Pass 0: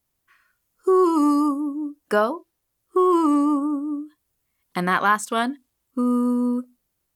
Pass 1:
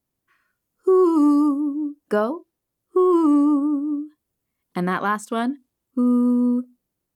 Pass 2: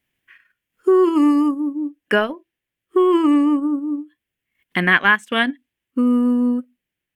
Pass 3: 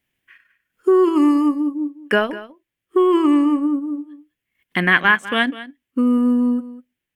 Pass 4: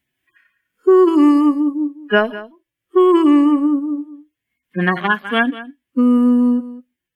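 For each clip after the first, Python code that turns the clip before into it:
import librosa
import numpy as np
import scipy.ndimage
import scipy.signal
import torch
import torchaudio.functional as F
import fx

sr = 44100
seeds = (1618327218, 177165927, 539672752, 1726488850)

y1 = fx.peak_eq(x, sr, hz=250.0, db=9.5, octaves=2.8)
y1 = y1 * 10.0 ** (-6.5 / 20.0)
y2 = fx.band_shelf(y1, sr, hz=2300.0, db=16.0, octaves=1.3)
y2 = fx.transient(y2, sr, attack_db=1, sustain_db=-8)
y2 = y2 * 10.0 ** (1.5 / 20.0)
y3 = y2 + 10.0 ** (-16.0 / 20.0) * np.pad(y2, (int(201 * sr / 1000.0), 0))[:len(y2)]
y4 = fx.hpss_only(y3, sr, part='harmonic')
y4 = y4 * 10.0 ** (3.5 / 20.0)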